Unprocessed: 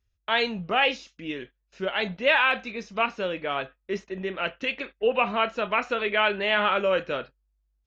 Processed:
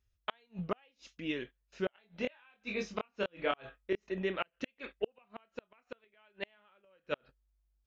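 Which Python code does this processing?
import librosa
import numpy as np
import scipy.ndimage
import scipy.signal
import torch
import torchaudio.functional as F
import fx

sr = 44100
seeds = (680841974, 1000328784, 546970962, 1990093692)

y = fx.gate_flip(x, sr, shuts_db=-17.0, range_db=-40)
y = fx.doubler(y, sr, ms=24.0, db=-2.5, at=(1.94, 4.09))
y = y * librosa.db_to_amplitude(-3.0)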